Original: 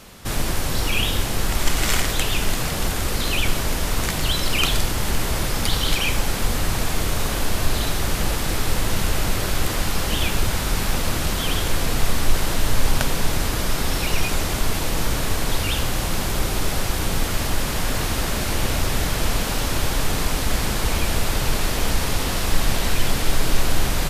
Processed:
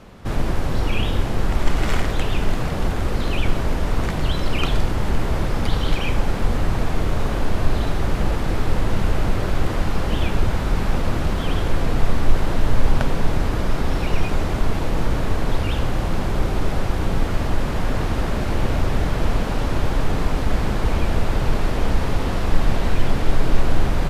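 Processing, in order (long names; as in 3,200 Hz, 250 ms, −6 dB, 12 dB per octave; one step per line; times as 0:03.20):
low-pass filter 1,000 Hz 6 dB per octave
level +3 dB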